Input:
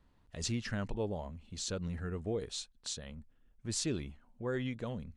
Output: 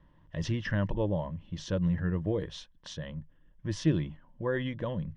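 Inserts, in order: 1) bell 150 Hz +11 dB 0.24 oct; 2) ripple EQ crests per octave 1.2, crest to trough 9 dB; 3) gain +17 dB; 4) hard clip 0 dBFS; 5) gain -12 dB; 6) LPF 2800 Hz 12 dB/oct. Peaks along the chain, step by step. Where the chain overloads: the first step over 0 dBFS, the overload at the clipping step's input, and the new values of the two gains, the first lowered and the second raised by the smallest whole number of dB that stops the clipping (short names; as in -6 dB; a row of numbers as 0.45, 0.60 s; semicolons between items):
-19.5, -18.5, -1.5, -1.5, -13.5, -14.0 dBFS; no overload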